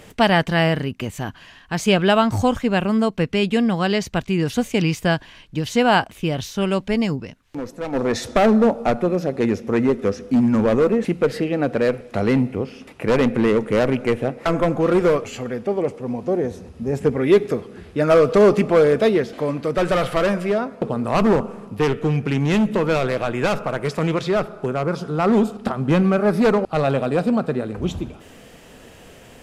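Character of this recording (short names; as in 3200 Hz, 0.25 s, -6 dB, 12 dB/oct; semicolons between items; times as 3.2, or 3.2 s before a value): noise floor -46 dBFS; spectral tilt -5.5 dB/oct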